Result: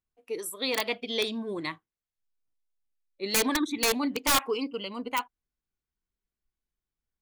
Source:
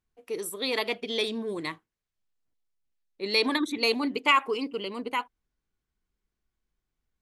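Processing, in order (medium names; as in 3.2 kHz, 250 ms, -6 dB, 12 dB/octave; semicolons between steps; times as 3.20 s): integer overflow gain 16.5 dB; spectral noise reduction 8 dB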